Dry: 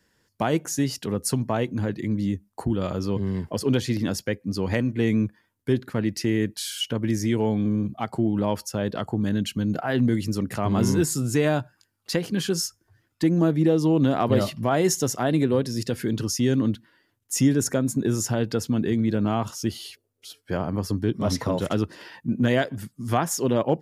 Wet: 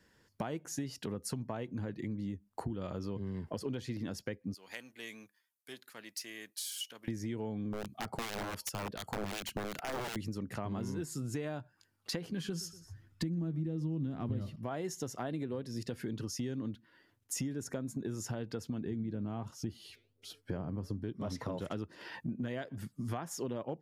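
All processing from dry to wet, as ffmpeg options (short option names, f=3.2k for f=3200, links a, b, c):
-filter_complex "[0:a]asettb=1/sr,asplit=3[a][b][c];[a]atrim=end=4.544[d];[b]atrim=start=4.54:end=7.08,asetpts=PTS-STARTPTS,afade=t=in:d=0.004:c=qsin,afade=t=out:st=2.536:d=0.004:c=qsin,aeval=exprs='if(lt(val(0),0),0.708*val(0),val(0))':c=same,highpass=120,aderivative[e];[c]atrim=start=7.076[f];[d][e]acrossfade=d=0.004:c1=hsin:c2=qsin[g];[g][f]acrossfade=d=0.004:c1=qsin:c2=hsin,asettb=1/sr,asplit=3[h][i][j];[h]atrim=end=7.734[k];[i]atrim=start=7.73:end=10.16,asetpts=PTS-STARTPTS,afade=t=in:d=0.004:c=qsin,afade=t=out:st=2.426:d=0.004:c=qsin,aemphasis=mode=production:type=cd,aeval=exprs='(mod(8.91*val(0)+1,2)-1)/8.91':c=same,acrossover=split=1700[l][m];[l]aeval=exprs='val(0)*(1-0.7/2+0.7/2*cos(2*PI*2.7*n/s))':c=same[n];[m]aeval=exprs='val(0)*(1-0.7/2-0.7/2*cos(2*PI*2.7*n/s))':c=same[o];[n][o]amix=inputs=2:normalize=0[p];[j]atrim=start=10.156[q];[k][p]acrossfade=d=0.004:c1=hsin:c2=qsin[r];[r][q]acrossfade=d=0.004:c1=qsin:c2=hsin,asettb=1/sr,asplit=3[s][t][u];[s]atrim=end=12.204[v];[t]atrim=start=12.2:end=14.56,asetpts=PTS-STARTPTS,afade=t=in:d=0.004:c=qsin,afade=t=out:st=2.356:d=0.004:c=qsin,asubboost=boost=10.5:cutoff=230,asplit=2[w][x];[x]adelay=12,volume=-13dB[y];[w][y]amix=inputs=2:normalize=0,atrim=end_sample=104076,aecho=1:1:121|242:0.0891|0.0294,atrim=end_sample=104076[z];[u]atrim=start=14.556[aa];[v][z]acrossfade=d=0.004:c1=hsin:c2=qsin[ab];[ab][aa]acrossfade=d=0.004:c1=qsin:c2=hsin,asettb=1/sr,asplit=3[ac][ad][ae];[ac]atrim=end=18.854[af];[ad]atrim=start=18.85:end=21.04,asetpts=PTS-STARTPTS,afade=t=in:d=0.004:c=qsin,afade=t=out:st=2.186:d=0.004:c=qsin,flanger=delay=1.3:depth=7.6:regen=87:speed=1.3:shape=triangular,lowshelf=f=400:g=9.5[ag];[ae]atrim=start=21.036[ah];[af][ag]acrossfade=d=0.004:c1=hsin:c2=qsin[ai];[ai][ah]acrossfade=d=0.004:c1=qsin:c2=hsin,highshelf=f=5.2k:g=-6,acompressor=threshold=-36dB:ratio=6"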